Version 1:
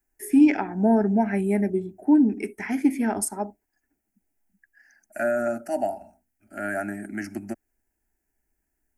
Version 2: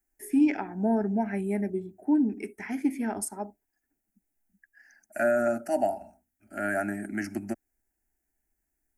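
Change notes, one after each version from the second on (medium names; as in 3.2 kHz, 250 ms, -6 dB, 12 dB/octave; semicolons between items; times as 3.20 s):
first voice -6.0 dB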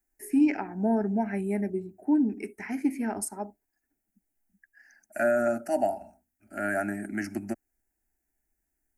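master: add Butterworth band-stop 3.4 kHz, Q 5.8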